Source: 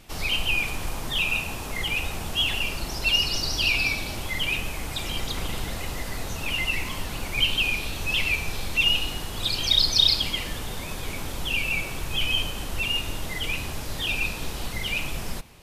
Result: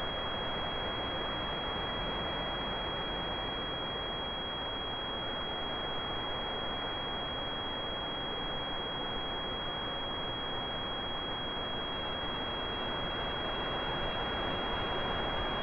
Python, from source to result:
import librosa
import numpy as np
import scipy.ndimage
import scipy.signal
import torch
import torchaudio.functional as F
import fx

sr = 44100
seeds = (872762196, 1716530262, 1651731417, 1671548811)

y = fx.envelope_flatten(x, sr, power=0.1)
y = fx.fixed_phaser(y, sr, hz=1100.0, stages=6)
y = fx.paulstretch(y, sr, seeds[0], factor=24.0, window_s=0.25, from_s=8.23)
y = fx.echo_thinned(y, sr, ms=237, feedback_pct=84, hz=1100.0, wet_db=-9.0)
y = fx.pwm(y, sr, carrier_hz=3300.0)
y = F.gain(torch.from_numpy(y), -7.5).numpy()